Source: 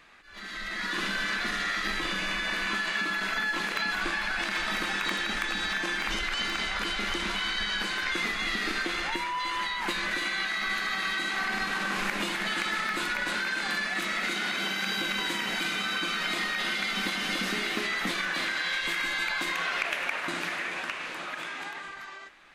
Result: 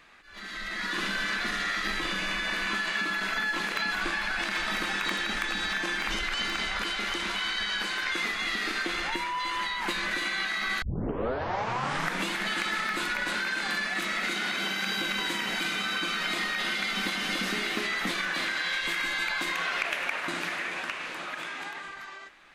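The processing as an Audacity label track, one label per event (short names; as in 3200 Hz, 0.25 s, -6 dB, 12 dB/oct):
6.820000	8.860000	low shelf 210 Hz -7.5 dB
10.820000	10.820000	tape start 1.47 s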